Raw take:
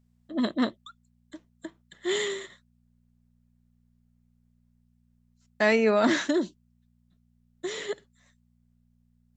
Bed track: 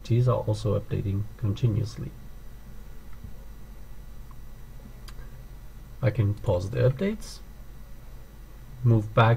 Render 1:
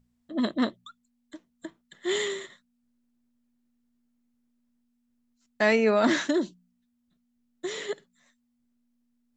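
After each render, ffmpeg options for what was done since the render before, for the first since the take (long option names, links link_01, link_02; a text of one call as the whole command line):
ffmpeg -i in.wav -af "bandreject=frequency=60:width_type=h:width=4,bandreject=frequency=120:width_type=h:width=4,bandreject=frequency=180:width_type=h:width=4" out.wav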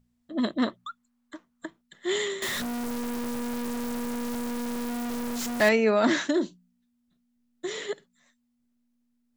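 ffmpeg -i in.wav -filter_complex "[0:a]asettb=1/sr,asplit=3[link_01][link_02][link_03];[link_01]atrim=end=0.674[link_04];[link_02]atrim=start=0.67:end=1.66,asetpts=PTS-STARTPTS,afade=type=in:duration=0.004:curve=qsin,afade=type=out:start_time=0.986:duration=0.004:curve=qsin,equalizer=frequency=1200:width_type=o:width=1.2:gain=12[link_05];[link_03]atrim=start=1.656[link_06];[link_04][link_05]acrossfade=duration=0.004:curve1=hsin:curve2=qsin[link_07];[link_07][link_06]acrossfade=duration=0.004:curve1=qsin:curve2=hsin,asettb=1/sr,asplit=3[link_08][link_09][link_10];[link_08]atrim=end=2.424[link_11];[link_09]atrim=start=2.42:end=5.69,asetpts=PTS-STARTPTS,afade=type=in:duration=0.004:curve=qsin,afade=type=out:start_time=3.266:duration=0.004:curve=qsin,aeval=exprs='val(0)+0.5*0.0562*sgn(val(0))':channel_layout=same[link_12];[link_10]atrim=start=5.686[link_13];[link_11][link_12]acrossfade=duration=0.004:curve1=hsin:curve2=qsin[link_14];[link_14][link_13]acrossfade=duration=0.004:curve1=qsin:curve2=hsin,asettb=1/sr,asplit=3[link_15][link_16][link_17];[link_15]atrim=end=6.324[link_18];[link_16]atrim=start=6.32:end=7.87,asetpts=PTS-STARTPTS,afade=type=in:duration=0.004:curve=qsin,afade=type=out:start_time=1.546:duration=0.004:curve=qsin,asplit=2[link_19][link_20];[link_20]adelay=34,volume=-13dB[link_21];[link_19][link_21]amix=inputs=2:normalize=0,atrim=end_sample=68355[link_22];[link_17]atrim=start=7.866[link_23];[link_18][link_22]acrossfade=duration=0.004:curve1=hsin:curve2=qsin[link_24];[link_24][link_23]acrossfade=duration=0.004:curve1=qsin:curve2=hsin" out.wav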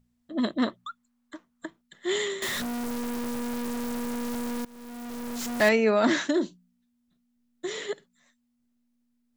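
ffmpeg -i in.wav -filter_complex "[0:a]asplit=2[link_01][link_02];[link_01]atrim=end=4.65,asetpts=PTS-STARTPTS,afade=type=out:start_time=4.646:duration=0.004:curve=hsin:silence=0.0794328[link_03];[link_02]atrim=start=4.65,asetpts=PTS-STARTPTS,afade=type=in:duration=0.95:silence=0.0794328[link_04];[link_03][link_04]concat=n=2:v=0:a=1" out.wav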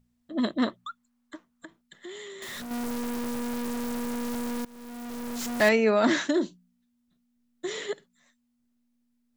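ffmpeg -i in.wav -filter_complex "[0:a]asettb=1/sr,asplit=3[link_01][link_02][link_03];[link_01]atrim=end=1.354[link_04];[link_02]atrim=start=1.35:end=2.71,asetpts=PTS-STARTPTS,afade=type=in:duration=0.004:curve=qsin,afade=type=out:start_time=1.356:duration=0.004:curve=qsin,acompressor=threshold=-39dB:ratio=6:attack=3.2:release=140:knee=1:detection=peak[link_05];[link_03]atrim=start=2.706[link_06];[link_04][link_05]acrossfade=duration=0.004:curve1=hsin:curve2=qsin[link_07];[link_07][link_06]acrossfade=duration=0.004:curve1=qsin:curve2=hsin" out.wav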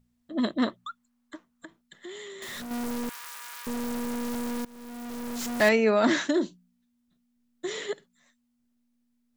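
ffmpeg -i in.wav -filter_complex "[0:a]asettb=1/sr,asplit=3[link_01][link_02][link_03];[link_01]atrim=end=3.094[link_04];[link_02]atrim=start=3.09:end=3.67,asetpts=PTS-STARTPTS,afade=type=in:duration=0.004:curve=qsin,afade=type=out:start_time=0.576:duration=0.004:curve=qsin,highpass=frequency=1100:width=0.5412,highpass=frequency=1100:width=1.3066[link_05];[link_03]atrim=start=3.666[link_06];[link_04][link_05]acrossfade=duration=0.004:curve1=hsin:curve2=qsin[link_07];[link_07][link_06]acrossfade=duration=0.004:curve1=qsin:curve2=hsin" out.wav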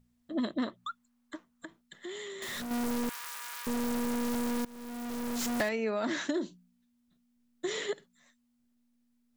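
ffmpeg -i in.wav -af "acompressor=threshold=-28dB:ratio=8" out.wav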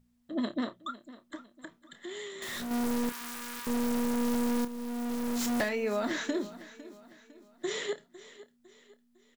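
ffmpeg -i in.wav -filter_complex "[0:a]asplit=2[link_01][link_02];[link_02]adelay=29,volume=-11dB[link_03];[link_01][link_03]amix=inputs=2:normalize=0,aecho=1:1:504|1008|1512|2016:0.141|0.0593|0.0249|0.0105" out.wav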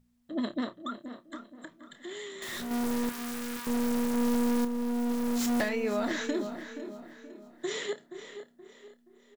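ffmpeg -i in.wav -filter_complex "[0:a]asplit=2[link_01][link_02];[link_02]adelay=475,lowpass=frequency=1800:poles=1,volume=-10.5dB,asplit=2[link_03][link_04];[link_04]adelay=475,lowpass=frequency=1800:poles=1,volume=0.39,asplit=2[link_05][link_06];[link_06]adelay=475,lowpass=frequency=1800:poles=1,volume=0.39,asplit=2[link_07][link_08];[link_08]adelay=475,lowpass=frequency=1800:poles=1,volume=0.39[link_09];[link_01][link_03][link_05][link_07][link_09]amix=inputs=5:normalize=0" out.wav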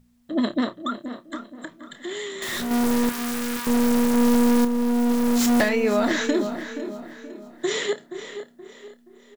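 ffmpeg -i in.wav -af "volume=9dB" out.wav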